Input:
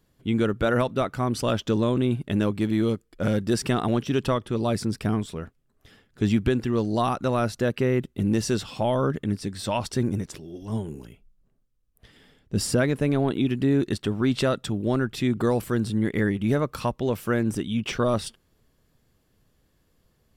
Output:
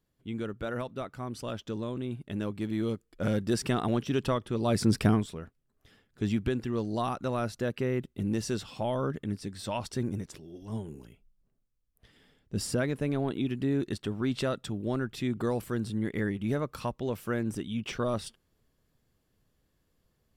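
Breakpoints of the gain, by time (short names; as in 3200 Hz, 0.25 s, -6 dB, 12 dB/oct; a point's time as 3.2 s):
2.06 s -12 dB
3.31 s -4.5 dB
4.61 s -4.5 dB
4.97 s +5 dB
5.39 s -7 dB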